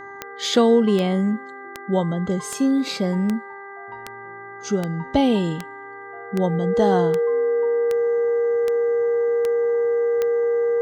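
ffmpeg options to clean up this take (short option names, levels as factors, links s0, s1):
-af "adeclick=t=4,bandreject=f=397.1:t=h:w=4,bandreject=f=794.2:t=h:w=4,bandreject=f=1191.3:t=h:w=4,bandreject=f=1588.4:t=h:w=4,bandreject=f=1985.5:t=h:w=4,bandreject=f=470:w=30"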